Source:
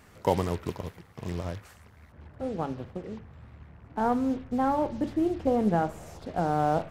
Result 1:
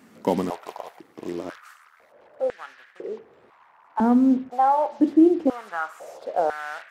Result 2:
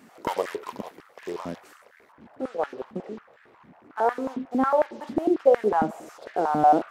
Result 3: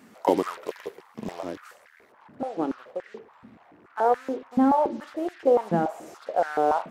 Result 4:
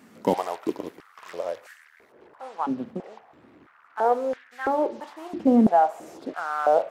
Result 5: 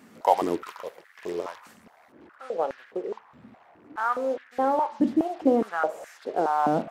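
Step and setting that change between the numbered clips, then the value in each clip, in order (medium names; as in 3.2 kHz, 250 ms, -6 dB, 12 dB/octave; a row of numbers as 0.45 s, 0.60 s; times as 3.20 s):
step-sequenced high-pass, rate: 2 Hz, 11 Hz, 7 Hz, 3 Hz, 4.8 Hz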